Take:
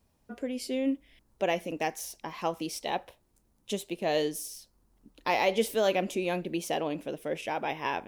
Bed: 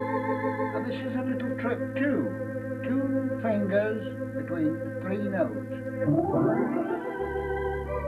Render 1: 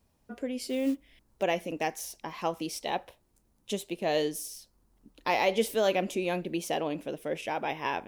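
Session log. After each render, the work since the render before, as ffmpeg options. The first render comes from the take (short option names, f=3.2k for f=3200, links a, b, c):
-filter_complex "[0:a]asettb=1/sr,asplit=3[a][b][c];[a]atrim=end=0.614[d];[b]atrim=start=0.61:end=1.43,asetpts=PTS-STARTPTS,afade=t=in:d=0.004:c=qsin,afade=t=out:st=0.816:d=0.004:c=qsin,acrusher=bits=6:mode=log:mix=0:aa=0.000001[e];[c]atrim=start=1.426[f];[d][e]acrossfade=d=0.004:c1=hsin:c2=qsin[g];[g][f]acrossfade=d=0.004:c1=qsin:c2=hsin"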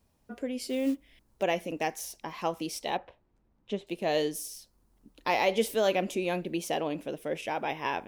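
-filter_complex "[0:a]asettb=1/sr,asplit=3[a][b][c];[a]atrim=end=2.974[d];[b]atrim=start=2.97:end=3.87,asetpts=PTS-STARTPTS,afade=t=in:d=0.004:c=qsin,afade=t=out:st=0.896:d=0.004:c=qsin,lowpass=2.4k[e];[c]atrim=start=3.866[f];[d][e]acrossfade=d=0.004:c1=hsin:c2=qsin[g];[g][f]acrossfade=d=0.004:c1=qsin:c2=hsin"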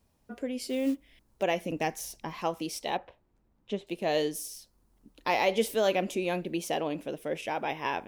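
-filter_complex "[0:a]asettb=1/sr,asplit=3[a][b][c];[a]atrim=end=1.654[d];[b]atrim=start=1.65:end=2.42,asetpts=PTS-STARTPTS,afade=t=in:d=0.004:c=qsin,afade=t=out:st=0.766:d=0.004:c=qsin,bass=f=250:g=7,treble=f=4k:g=0[e];[c]atrim=start=2.416[f];[d][e]acrossfade=d=0.004:c1=hsin:c2=qsin[g];[g][f]acrossfade=d=0.004:c1=qsin:c2=hsin"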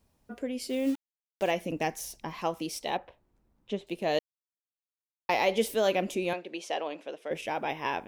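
-filter_complex "[0:a]asettb=1/sr,asplit=3[a][b][c];[a]atrim=end=0.884[d];[b]atrim=start=0.88:end=1.51,asetpts=PTS-STARTPTS,afade=t=in:d=0.004:c=qsin,afade=t=out:st=0.626:d=0.004:c=qsin,aeval=exprs='val(0)*gte(abs(val(0)),0.01)':c=same[e];[c]atrim=start=1.506[f];[d][e]acrossfade=d=0.004:c1=hsin:c2=qsin[g];[g][f]acrossfade=d=0.004:c1=qsin:c2=hsin,asettb=1/sr,asplit=3[h][i][j];[h]atrim=end=6.334[k];[i]atrim=start=6.33:end=7.31,asetpts=PTS-STARTPTS,afade=t=in:d=0.004:c=qsin,afade=t=out:st=0.976:d=0.004:c=qsin,highpass=480,lowpass=5.7k[l];[j]atrim=start=7.306[m];[k][l]acrossfade=d=0.004:c1=hsin:c2=qsin[n];[n][m]acrossfade=d=0.004:c1=qsin:c2=hsin,asplit=3[o][p][q];[o]atrim=end=4.19,asetpts=PTS-STARTPTS,afade=t=out:st=4.186:d=0.004:c=hsin[r];[p]atrim=start=4.19:end=5.29,asetpts=PTS-STARTPTS,volume=0[s];[q]atrim=start=5.29,asetpts=PTS-STARTPTS,afade=t=in:d=0.004:c=hsin[t];[r][s][t]concat=n=3:v=0:a=1"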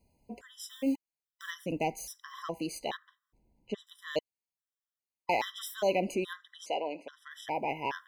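-af "asoftclip=type=tanh:threshold=-15.5dB,afftfilt=real='re*gt(sin(2*PI*1.2*pts/sr)*(1-2*mod(floor(b*sr/1024/1000),2)),0)':imag='im*gt(sin(2*PI*1.2*pts/sr)*(1-2*mod(floor(b*sr/1024/1000),2)),0)':win_size=1024:overlap=0.75"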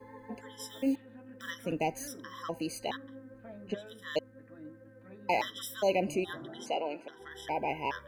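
-filter_complex "[1:a]volume=-21.5dB[a];[0:a][a]amix=inputs=2:normalize=0"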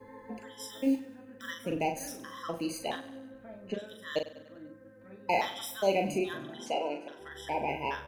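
-filter_complex "[0:a]asplit=2[a][b];[b]adelay=41,volume=-6dB[c];[a][c]amix=inputs=2:normalize=0,aecho=1:1:98|196|294|392|490:0.158|0.084|0.0445|0.0236|0.0125"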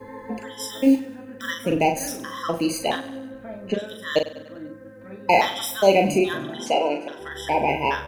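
-af "volume=11dB"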